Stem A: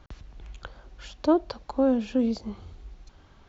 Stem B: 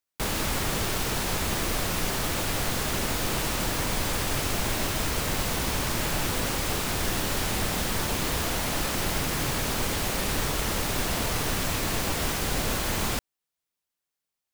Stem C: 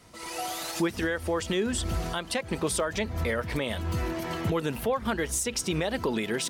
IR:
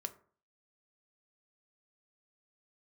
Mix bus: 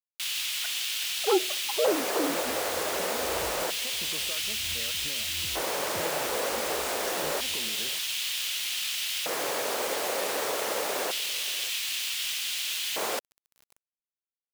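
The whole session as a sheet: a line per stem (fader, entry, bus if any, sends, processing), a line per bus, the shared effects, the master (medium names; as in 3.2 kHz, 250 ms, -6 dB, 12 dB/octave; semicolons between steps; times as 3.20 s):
-3.5 dB, 0.00 s, send -5 dB, no echo send, formants replaced by sine waves; high-pass 480 Hz 6 dB/octave
-2.5 dB, 0.00 s, send -22.5 dB, echo send -19 dB, LFO high-pass square 0.27 Hz 500–3000 Hz
-15.5 dB, 1.50 s, no send, no echo send, none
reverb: on, RT60 0.45 s, pre-delay 3 ms
echo: delay 580 ms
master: small samples zeroed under -40 dBFS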